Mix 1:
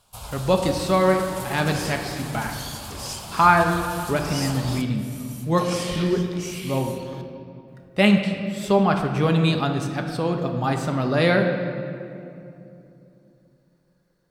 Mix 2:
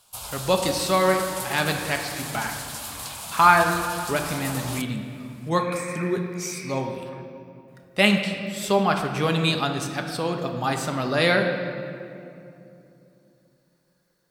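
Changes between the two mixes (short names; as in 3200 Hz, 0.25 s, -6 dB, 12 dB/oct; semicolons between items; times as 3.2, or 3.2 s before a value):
second sound: add brick-wall FIR band-pass 950–2600 Hz; master: add tilt +2 dB/oct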